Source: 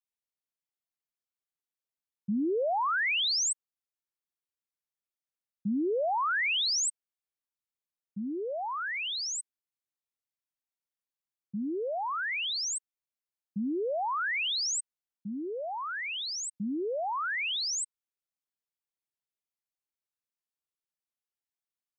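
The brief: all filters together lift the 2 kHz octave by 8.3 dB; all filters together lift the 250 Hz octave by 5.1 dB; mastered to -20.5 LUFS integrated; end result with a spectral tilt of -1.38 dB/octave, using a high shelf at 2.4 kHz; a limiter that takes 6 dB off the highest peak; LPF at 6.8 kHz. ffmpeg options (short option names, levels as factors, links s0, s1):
-af "lowpass=6800,equalizer=f=250:t=o:g=6,equalizer=f=2000:t=o:g=8,highshelf=f=2400:g=4.5,volume=2,alimiter=limit=0.168:level=0:latency=1"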